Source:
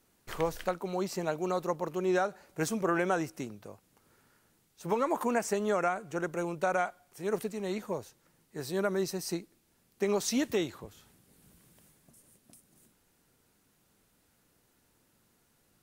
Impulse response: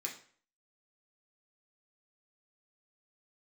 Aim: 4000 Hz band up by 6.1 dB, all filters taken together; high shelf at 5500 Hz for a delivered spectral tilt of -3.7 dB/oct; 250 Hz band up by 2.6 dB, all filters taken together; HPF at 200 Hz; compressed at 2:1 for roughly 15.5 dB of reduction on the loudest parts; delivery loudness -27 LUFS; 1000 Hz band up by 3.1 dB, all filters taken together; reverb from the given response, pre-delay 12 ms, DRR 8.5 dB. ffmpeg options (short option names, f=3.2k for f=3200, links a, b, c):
-filter_complex "[0:a]highpass=200,equalizer=f=250:t=o:g=5.5,equalizer=f=1k:t=o:g=3.5,equalizer=f=4k:t=o:g=6,highshelf=f=5.5k:g=3.5,acompressor=threshold=-52dB:ratio=2,asplit=2[a][b];[1:a]atrim=start_sample=2205,adelay=12[c];[b][c]afir=irnorm=-1:irlink=0,volume=-8.5dB[d];[a][d]amix=inputs=2:normalize=0,volume=17dB"